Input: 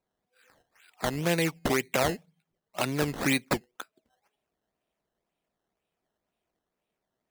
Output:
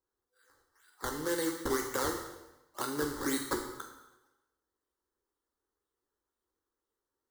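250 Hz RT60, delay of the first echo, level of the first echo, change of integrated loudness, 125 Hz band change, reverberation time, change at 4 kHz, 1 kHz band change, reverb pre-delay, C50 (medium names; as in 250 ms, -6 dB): 1.0 s, no echo, no echo, -6.0 dB, -14.0 dB, 1.0 s, -7.0 dB, -4.5 dB, 5 ms, 6.0 dB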